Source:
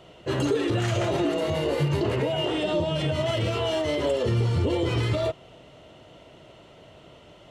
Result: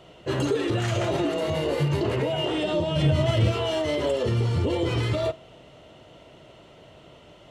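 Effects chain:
0:02.96–0:03.52: low-shelf EQ 180 Hz +11 dB
convolution reverb RT60 0.35 s, pre-delay 6 ms, DRR 18.5 dB

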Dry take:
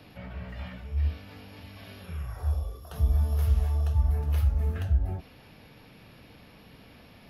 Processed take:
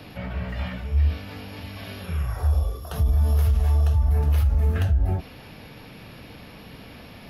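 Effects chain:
brickwall limiter −23 dBFS, peak gain reduction 8.5 dB
level +9 dB

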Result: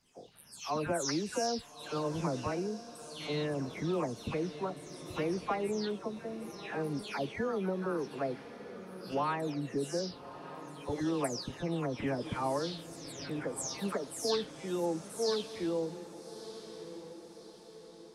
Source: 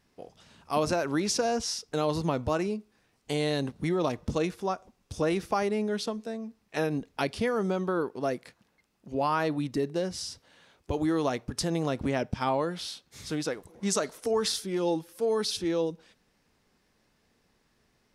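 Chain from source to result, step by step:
every frequency bin delayed by itself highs early, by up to 341 ms
feedback delay with all-pass diffusion 1,247 ms, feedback 48%, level −12.5 dB
level −5 dB

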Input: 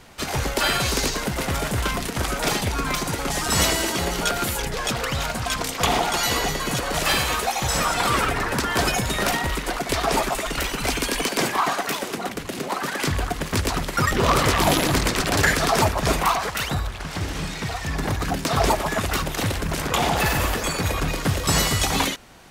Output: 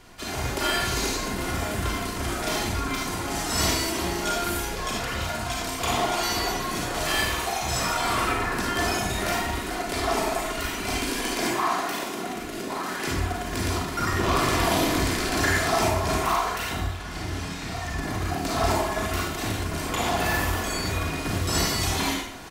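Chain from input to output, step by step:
comb filter 2.9 ms, depth 35%
hum removal 47.72 Hz, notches 3
reversed playback
upward compression, threshold −26 dBFS
reversed playback
convolution reverb RT60 0.75 s, pre-delay 27 ms, DRR −3.5 dB
level −9 dB

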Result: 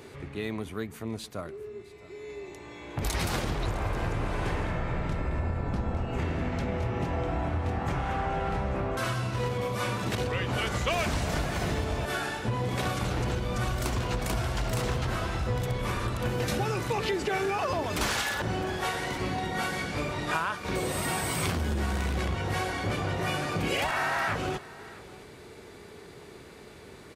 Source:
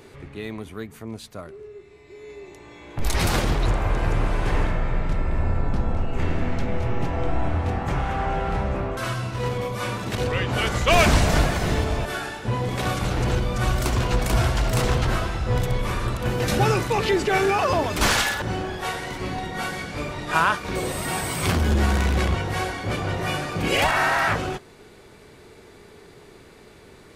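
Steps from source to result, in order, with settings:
high-pass filter 48 Hz
downward compressor, threshold −26 dBFS, peak gain reduction 12.5 dB
on a send: single-tap delay 659 ms −19.5 dB

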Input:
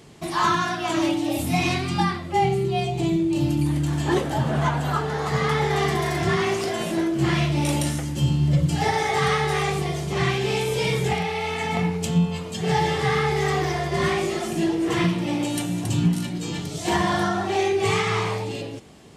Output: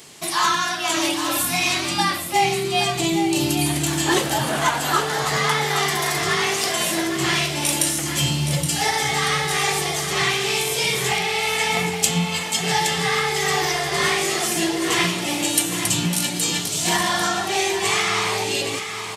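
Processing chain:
spectral tilt +3.5 dB per octave
speech leveller 0.5 s
single-tap delay 819 ms −8.5 dB
level +2.5 dB

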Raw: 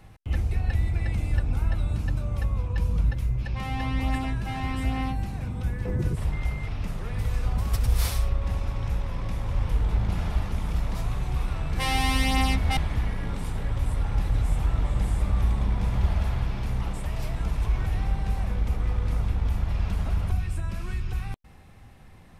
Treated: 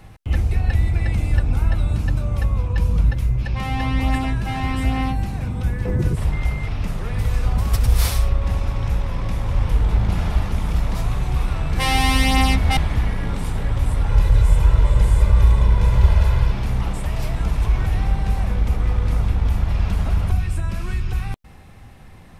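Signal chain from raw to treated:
0:14.09–0:16.52: comb filter 2 ms, depth 60%
level +6.5 dB

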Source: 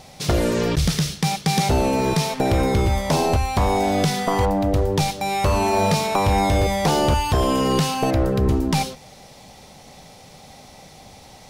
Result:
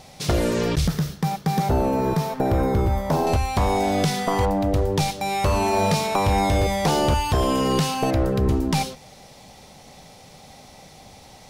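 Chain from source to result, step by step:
0:00.87–0:03.27: flat-topped bell 4,700 Hz −10 dB 2.6 octaves
level −1.5 dB

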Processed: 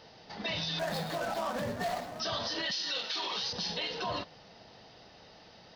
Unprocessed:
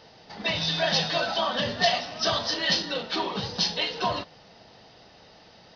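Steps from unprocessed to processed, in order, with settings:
0:00.79–0:02.20: running median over 15 samples
0:02.71–0:03.53: spectral tilt +4.5 dB per octave
brickwall limiter −23 dBFS, peak gain reduction 20 dB
level −2.5 dB

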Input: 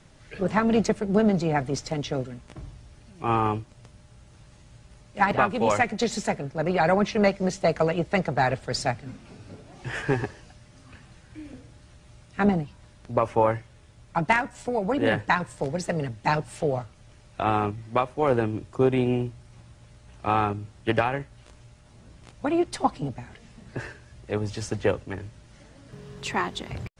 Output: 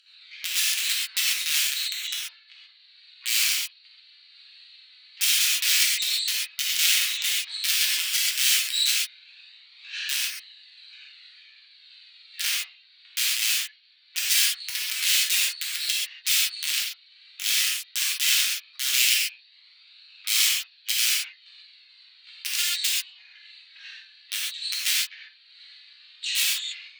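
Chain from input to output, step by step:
hearing-aid frequency compression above 3,600 Hz 4 to 1
noise gate with hold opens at −43 dBFS
in parallel at +2 dB: upward compression, threshold −25 dBFS
on the sum: flanger 0.1 Hz, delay 0.7 ms, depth 3.3 ms, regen −17%
harmonic generator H 4 −30 dB, 6 −11 dB, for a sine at −2.5 dBFS
flanger 0.49 Hz, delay 3 ms, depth 7.4 ms, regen −46%
wrap-around overflow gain 13 dB
inverse Chebyshev high-pass filter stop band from 420 Hz, stop band 80 dB
reverb whose tail is shaped and stops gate 160 ms flat, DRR −6.5 dB
one half of a high-frequency compander decoder only

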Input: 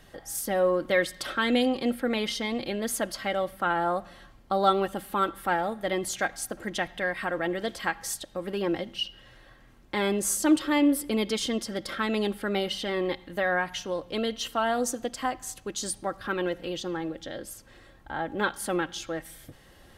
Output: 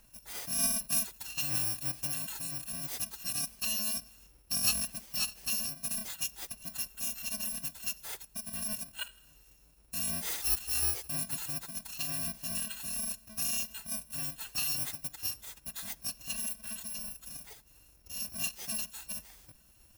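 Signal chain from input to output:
samples in bit-reversed order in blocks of 128 samples
phase-vocoder pitch shift with formants kept +4 semitones
level −6 dB

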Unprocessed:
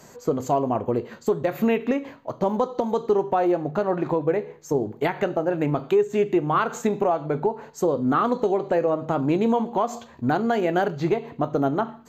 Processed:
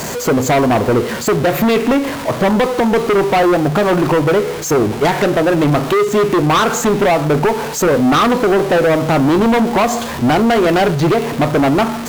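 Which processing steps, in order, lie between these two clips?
converter with a step at zero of −33 dBFS
harmonic generator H 5 −9 dB, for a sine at −10.5 dBFS
level +4.5 dB

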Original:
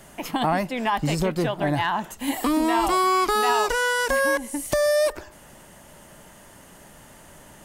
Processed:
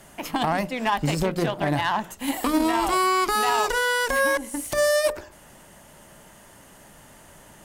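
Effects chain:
mains-hum notches 60/120/180/240/300/360/420/480/540/600 Hz
brickwall limiter −15 dBFS, peak gain reduction 6 dB
harmonic generator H 3 −19 dB, 6 −28 dB, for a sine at −15 dBFS
level +2.5 dB

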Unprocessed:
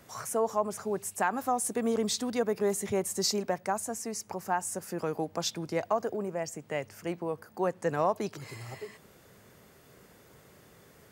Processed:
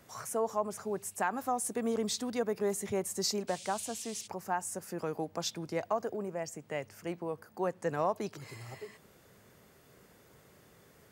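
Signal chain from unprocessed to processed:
0:03.47–0:04.26: noise in a band 2,500–9,000 Hz −45 dBFS
level −3.5 dB

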